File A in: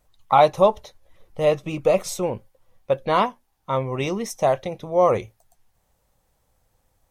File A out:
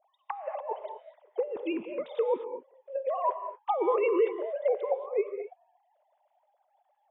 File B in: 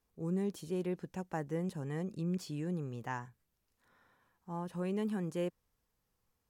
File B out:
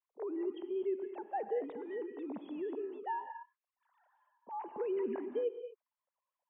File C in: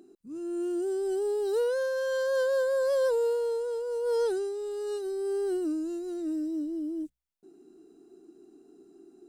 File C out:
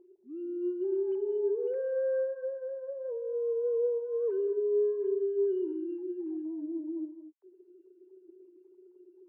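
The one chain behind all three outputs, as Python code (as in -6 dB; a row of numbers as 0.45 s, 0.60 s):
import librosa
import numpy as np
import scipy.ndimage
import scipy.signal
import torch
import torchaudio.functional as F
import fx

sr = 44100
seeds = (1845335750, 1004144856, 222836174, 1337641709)

y = fx.sine_speech(x, sr)
y = fx.over_compress(y, sr, threshold_db=-33.0, ratio=-1.0)
y = fx.band_shelf(y, sr, hz=620.0, db=10.5, octaves=1.7)
y = fx.rev_gated(y, sr, seeds[0], gate_ms=260, shape='rising', drr_db=7.5)
y = F.gain(torch.from_numpy(y), -8.5).numpy()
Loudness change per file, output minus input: -9.5 LU, -1.0 LU, -2.5 LU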